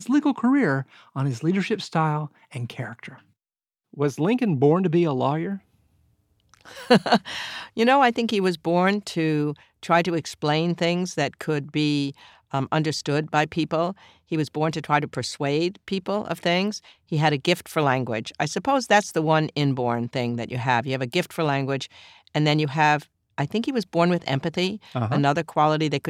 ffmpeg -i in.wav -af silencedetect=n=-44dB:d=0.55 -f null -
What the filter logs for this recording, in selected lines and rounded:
silence_start: 3.20
silence_end: 3.93 | silence_duration: 0.74
silence_start: 5.59
silence_end: 6.54 | silence_duration: 0.95